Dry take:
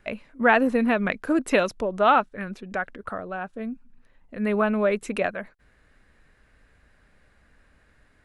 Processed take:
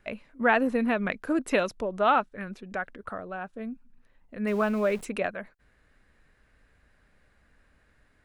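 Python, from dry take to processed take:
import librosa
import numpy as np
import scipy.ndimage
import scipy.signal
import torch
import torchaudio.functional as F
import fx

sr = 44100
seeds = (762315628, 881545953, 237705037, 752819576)

y = fx.zero_step(x, sr, step_db=-36.5, at=(4.47, 5.05))
y = F.gain(torch.from_numpy(y), -4.0).numpy()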